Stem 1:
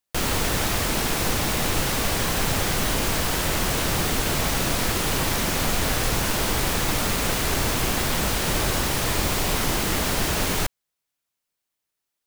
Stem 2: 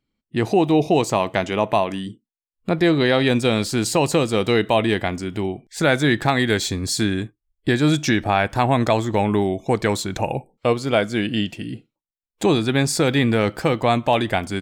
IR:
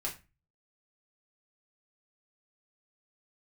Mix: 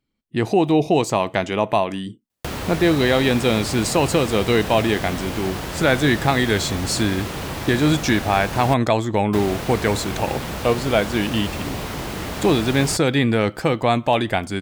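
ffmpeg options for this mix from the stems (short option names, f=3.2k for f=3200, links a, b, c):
-filter_complex "[0:a]highpass=54,lowshelf=f=470:g=12,acrossover=split=460|4600[a][b][c];[a]acompressor=threshold=-31dB:ratio=4[d];[b]acompressor=threshold=-30dB:ratio=4[e];[c]acompressor=threshold=-41dB:ratio=4[f];[d][e][f]amix=inputs=3:normalize=0,adelay=2300,volume=-0.5dB,asplit=3[g][h][i];[g]atrim=end=8.74,asetpts=PTS-STARTPTS,afade=t=out:st=8.736:d=0.004:c=hsin[j];[h]atrim=start=8.74:end=9.33,asetpts=PTS-STARTPTS,volume=0[k];[i]atrim=start=9.33,asetpts=PTS-STARTPTS,afade=t=in:d=0.004:c=hsin[l];[j][k][l]concat=n=3:v=0:a=1[m];[1:a]volume=0dB[n];[m][n]amix=inputs=2:normalize=0"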